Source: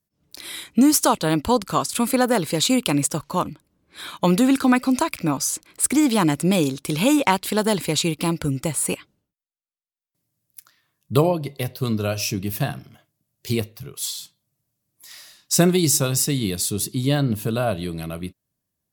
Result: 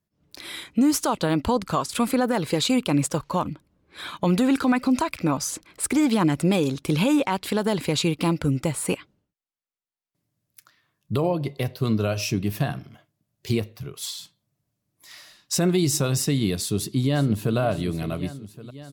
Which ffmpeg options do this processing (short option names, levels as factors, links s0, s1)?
-filter_complex "[0:a]asettb=1/sr,asplit=3[s0][s1][s2];[s0]atrim=end=1.564[s3];[s1]atrim=start=1.56:end=7.06,asetpts=PTS-STARTPTS,afade=t=in:d=0.004:c=qsin,afade=t=out:st=5.496:d=0.004:c=qsin,aphaser=in_gain=1:out_gain=1:delay=2.6:decay=0.26:speed=1.5:type=triangular[s4];[s2]atrim=start=7.056[s5];[s3][s4]acrossfade=d=0.004:c1=hsin:c2=qsin[s6];[s6][s5]acrossfade=d=0.004:c1=qsin:c2=hsin,asplit=2[s7][s8];[s8]afade=t=in:st=16.57:d=0.01,afade=t=out:st=17.58:d=0.01,aecho=0:1:560|1120|1680|2240|2800|3360|3920:0.177828|0.115588|0.0751323|0.048836|0.0317434|0.0206332|0.0134116[s9];[s7][s9]amix=inputs=2:normalize=0,highshelf=f=5600:g=-11,alimiter=limit=0.2:level=0:latency=1:release=107,volume=1.19"